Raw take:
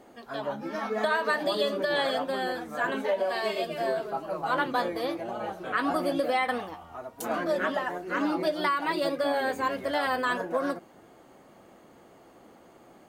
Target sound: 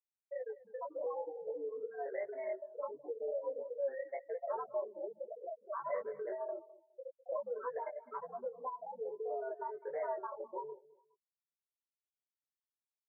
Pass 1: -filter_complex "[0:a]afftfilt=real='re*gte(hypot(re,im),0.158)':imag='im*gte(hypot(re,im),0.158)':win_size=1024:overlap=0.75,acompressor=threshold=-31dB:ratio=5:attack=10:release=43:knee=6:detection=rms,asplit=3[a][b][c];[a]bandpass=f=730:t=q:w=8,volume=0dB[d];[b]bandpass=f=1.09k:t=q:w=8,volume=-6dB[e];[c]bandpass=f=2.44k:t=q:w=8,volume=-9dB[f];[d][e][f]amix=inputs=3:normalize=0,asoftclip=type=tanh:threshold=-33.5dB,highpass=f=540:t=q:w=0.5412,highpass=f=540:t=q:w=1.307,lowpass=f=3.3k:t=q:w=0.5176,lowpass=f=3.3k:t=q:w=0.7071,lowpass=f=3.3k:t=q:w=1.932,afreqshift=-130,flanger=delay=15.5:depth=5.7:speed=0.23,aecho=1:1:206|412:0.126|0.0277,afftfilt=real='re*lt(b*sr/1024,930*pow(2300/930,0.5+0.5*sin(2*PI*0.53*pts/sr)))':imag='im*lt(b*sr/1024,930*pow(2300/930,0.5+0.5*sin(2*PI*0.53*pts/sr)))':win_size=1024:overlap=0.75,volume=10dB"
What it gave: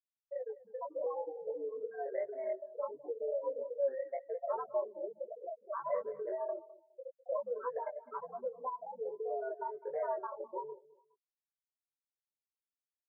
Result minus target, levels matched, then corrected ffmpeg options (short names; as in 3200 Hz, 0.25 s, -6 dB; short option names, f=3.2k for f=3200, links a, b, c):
soft clip: distortion -7 dB
-filter_complex "[0:a]afftfilt=real='re*gte(hypot(re,im),0.158)':imag='im*gte(hypot(re,im),0.158)':win_size=1024:overlap=0.75,acompressor=threshold=-31dB:ratio=5:attack=10:release=43:knee=6:detection=rms,asplit=3[a][b][c];[a]bandpass=f=730:t=q:w=8,volume=0dB[d];[b]bandpass=f=1.09k:t=q:w=8,volume=-6dB[e];[c]bandpass=f=2.44k:t=q:w=8,volume=-9dB[f];[d][e][f]amix=inputs=3:normalize=0,asoftclip=type=tanh:threshold=-39.5dB,highpass=f=540:t=q:w=0.5412,highpass=f=540:t=q:w=1.307,lowpass=f=3.3k:t=q:w=0.5176,lowpass=f=3.3k:t=q:w=0.7071,lowpass=f=3.3k:t=q:w=1.932,afreqshift=-130,flanger=delay=15.5:depth=5.7:speed=0.23,aecho=1:1:206|412:0.126|0.0277,afftfilt=real='re*lt(b*sr/1024,930*pow(2300/930,0.5+0.5*sin(2*PI*0.53*pts/sr)))':imag='im*lt(b*sr/1024,930*pow(2300/930,0.5+0.5*sin(2*PI*0.53*pts/sr)))':win_size=1024:overlap=0.75,volume=10dB"